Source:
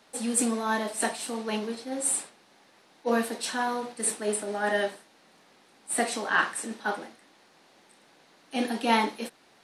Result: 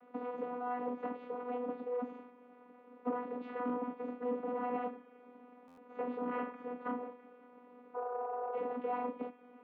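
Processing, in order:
sub-harmonics by changed cycles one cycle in 2, inverted
healed spectral selection 0:07.97–0:08.69, 500–1,300 Hz after
downward compressor 2 to 1, threshold −40 dBFS, peak gain reduction 12 dB
flanger 0.39 Hz, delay 9.4 ms, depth 4.3 ms, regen +63%
channel vocoder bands 16, saw 246 Hz
soft clipping −37 dBFS, distortion −13 dB
loudspeaker in its box 170–2,100 Hz, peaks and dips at 170 Hz +5 dB, 280 Hz +6 dB, 400 Hz +8 dB, 580 Hz +4 dB, 1,100 Hz +3 dB, 1,700 Hz −7 dB
delay with a high-pass on its return 111 ms, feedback 76%, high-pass 1,600 Hz, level −18 dB
buffer that repeats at 0:05.67, samples 512, times 8
level +4.5 dB

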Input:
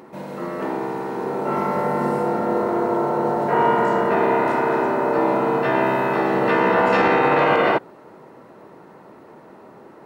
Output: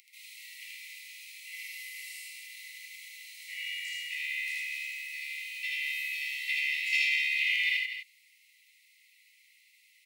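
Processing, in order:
Chebyshev high-pass filter 2,000 Hz, order 10
high-shelf EQ 8,400 Hz +4.5 dB
loudspeakers that aren't time-aligned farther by 27 metres −1 dB, 84 metres −8 dB

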